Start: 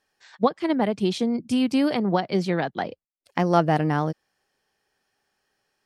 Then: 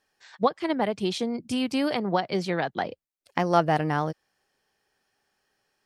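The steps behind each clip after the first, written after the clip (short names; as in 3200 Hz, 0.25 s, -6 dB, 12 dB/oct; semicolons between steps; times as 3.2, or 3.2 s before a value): dynamic EQ 220 Hz, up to -6 dB, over -33 dBFS, Q 0.79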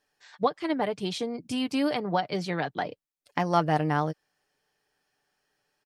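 comb 6.8 ms, depth 39%; gain -2.5 dB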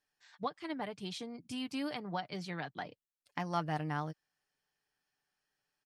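bell 480 Hz -6.5 dB 1.3 oct; gain -8.5 dB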